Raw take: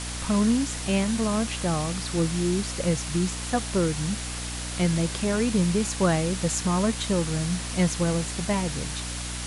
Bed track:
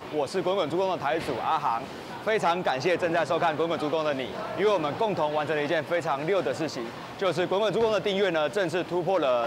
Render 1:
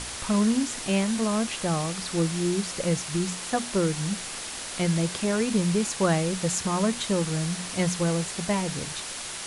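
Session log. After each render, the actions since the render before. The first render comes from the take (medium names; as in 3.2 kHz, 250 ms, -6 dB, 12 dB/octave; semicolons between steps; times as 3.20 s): hum notches 60/120/180/240/300 Hz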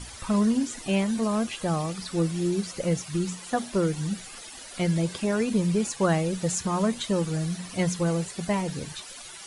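noise reduction 13 dB, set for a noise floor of -36 dBFS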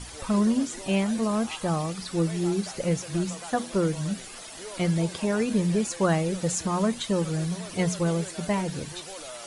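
add bed track -18.5 dB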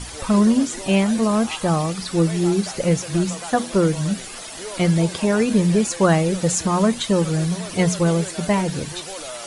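trim +7 dB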